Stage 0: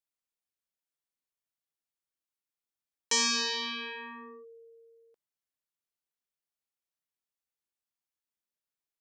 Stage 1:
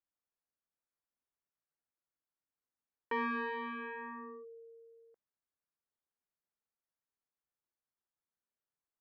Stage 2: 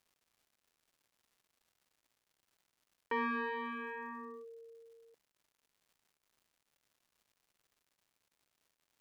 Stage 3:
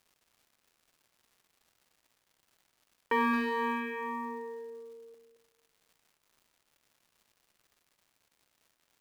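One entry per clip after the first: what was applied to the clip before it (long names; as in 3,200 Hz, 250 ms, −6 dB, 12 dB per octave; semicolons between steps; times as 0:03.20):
inverse Chebyshev low-pass filter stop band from 7,300 Hz, stop band 70 dB
surface crackle 280 per second −62 dBFS
far-end echo of a speakerphone 220 ms, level −9 dB; convolution reverb RT60 1.5 s, pre-delay 43 ms, DRR 11.5 dB; in parallel at −10.5 dB: floating-point word with a short mantissa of 2 bits; on the sum: level +4.5 dB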